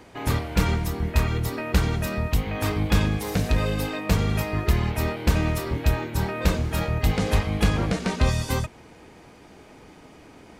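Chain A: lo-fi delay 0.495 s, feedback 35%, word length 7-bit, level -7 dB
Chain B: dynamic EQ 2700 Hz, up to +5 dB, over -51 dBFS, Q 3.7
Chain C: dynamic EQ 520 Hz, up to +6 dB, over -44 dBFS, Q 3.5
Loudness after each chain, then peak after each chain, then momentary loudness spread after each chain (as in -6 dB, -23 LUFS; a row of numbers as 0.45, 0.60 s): -24.5, -24.5, -24.5 LUFS; -7.5, -7.5, -7.5 dBFS; 6, 4, 4 LU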